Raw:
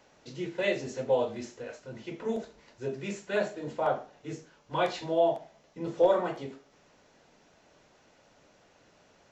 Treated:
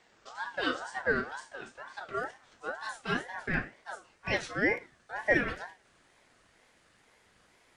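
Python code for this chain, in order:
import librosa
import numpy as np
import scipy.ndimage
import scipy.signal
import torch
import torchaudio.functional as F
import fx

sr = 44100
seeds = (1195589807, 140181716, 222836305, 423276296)

y = fx.speed_glide(x, sr, from_pct=100, to_pct=140)
y = fx.ring_lfo(y, sr, carrier_hz=1100.0, swing_pct=20, hz=2.1)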